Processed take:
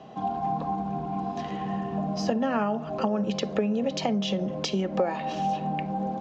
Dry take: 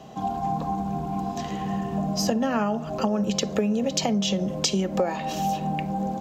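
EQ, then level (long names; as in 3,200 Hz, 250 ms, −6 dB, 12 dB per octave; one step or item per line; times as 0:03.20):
high-frequency loss of the air 180 metres
low-shelf EQ 75 Hz −7 dB
low-shelf EQ 150 Hz −5 dB
0.0 dB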